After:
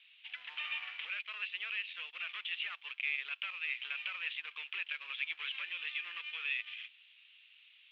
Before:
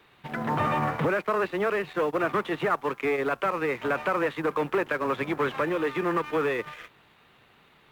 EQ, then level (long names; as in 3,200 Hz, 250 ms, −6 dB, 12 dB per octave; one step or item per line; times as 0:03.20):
flat-topped band-pass 2,900 Hz, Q 2.8
+5.0 dB